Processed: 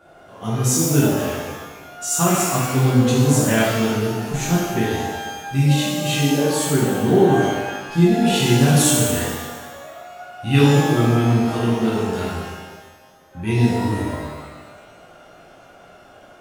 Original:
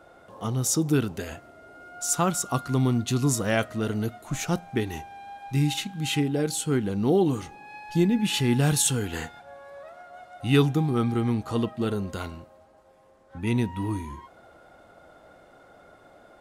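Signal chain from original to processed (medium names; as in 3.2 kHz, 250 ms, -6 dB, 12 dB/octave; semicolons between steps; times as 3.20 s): pitch-shifted reverb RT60 1.3 s, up +12 st, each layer -8 dB, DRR -7 dB; trim -1.5 dB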